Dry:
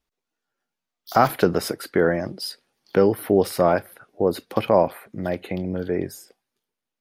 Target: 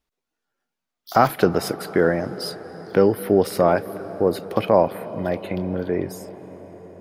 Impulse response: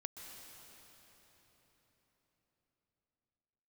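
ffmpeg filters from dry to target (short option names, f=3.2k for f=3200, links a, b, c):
-filter_complex "[0:a]asplit=2[a][b];[1:a]atrim=start_sample=2205,asetrate=25578,aresample=44100,highshelf=f=3.9k:g=-11.5[c];[b][c]afir=irnorm=-1:irlink=0,volume=-9dB[d];[a][d]amix=inputs=2:normalize=0,volume=-1dB"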